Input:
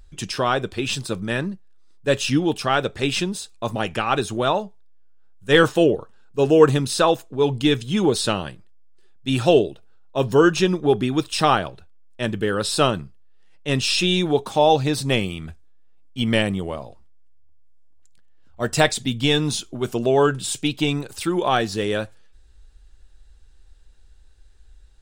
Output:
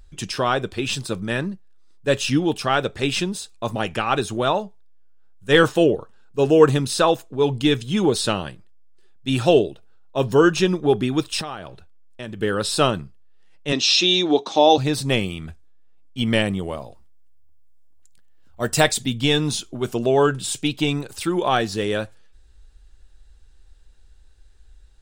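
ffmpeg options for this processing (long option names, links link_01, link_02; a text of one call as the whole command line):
ffmpeg -i in.wav -filter_complex "[0:a]asettb=1/sr,asplit=3[link_01][link_02][link_03];[link_01]atrim=end=11.414[link_04];[link_02]atrim=start=11.41:end=12.42,asetpts=PTS-STARTPTS,afade=type=in:duration=0.004:curve=qsin,afade=type=out:start_time=1.006:duration=0.004:curve=qsin,acompressor=threshold=-30dB:ratio=4:attack=3.2:release=140:knee=1:detection=peak[link_05];[link_03]atrim=start=12.416[link_06];[link_04][link_05]acrossfade=duration=0.004:curve1=hsin:curve2=qsin[link_07];[link_07][link_06]acrossfade=duration=0.004:curve1=qsin:curve2=hsin,asettb=1/sr,asplit=3[link_08][link_09][link_10];[link_08]atrim=end=13.724[link_11];[link_09]atrim=start=13.72:end=14.78,asetpts=PTS-STARTPTS,afade=type=in:duration=0.004:curve=qsin,afade=type=out:start_time=1.056:duration=0.004:curve=qsin,highpass=280,equalizer=frequency=300:width_type=q:width=4:gain=8,equalizer=frequency=690:width_type=q:width=4:gain=3,equalizer=frequency=1500:width_type=q:width=4:gain=-3,equalizer=frequency=3900:width_type=q:width=4:gain=8,equalizer=frequency=6000:width_type=q:width=4:gain=8,lowpass=frequency=6600:width=0.5412,lowpass=frequency=6600:width=1.3066[link_12];[link_10]atrim=start=14.776[link_13];[link_11][link_12]acrossfade=duration=0.004:curve1=hsin:curve2=qsin[link_14];[link_14][link_13]acrossfade=duration=0.004:curve1=qsin:curve2=hsin,asettb=1/sr,asplit=3[link_15][link_16][link_17];[link_15]atrim=end=16.634[link_18];[link_16]atrim=start=16.63:end=19.06,asetpts=PTS-STARTPTS,afade=type=in:duration=0.004:curve=qsin,afade=type=out:start_time=2.426:duration=0.004:curve=qsin,highshelf=frequency=10000:gain=10.5[link_19];[link_17]atrim=start=19.056[link_20];[link_18][link_19]acrossfade=duration=0.004:curve1=hsin:curve2=qsin[link_21];[link_21][link_20]acrossfade=duration=0.004:curve1=qsin:curve2=hsin" out.wav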